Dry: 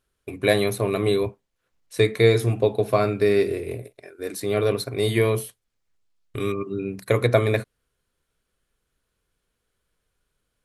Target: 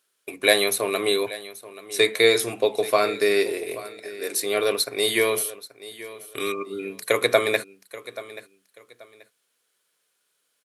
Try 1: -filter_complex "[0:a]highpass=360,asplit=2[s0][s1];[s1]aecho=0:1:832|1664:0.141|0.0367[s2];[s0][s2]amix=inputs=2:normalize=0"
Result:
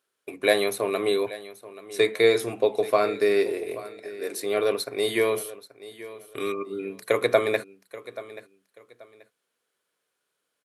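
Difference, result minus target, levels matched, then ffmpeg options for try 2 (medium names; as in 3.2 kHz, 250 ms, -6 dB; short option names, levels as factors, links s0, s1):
4 kHz band -5.0 dB
-filter_complex "[0:a]highpass=360,highshelf=f=2100:g=10,asplit=2[s0][s1];[s1]aecho=0:1:832|1664:0.141|0.0367[s2];[s0][s2]amix=inputs=2:normalize=0"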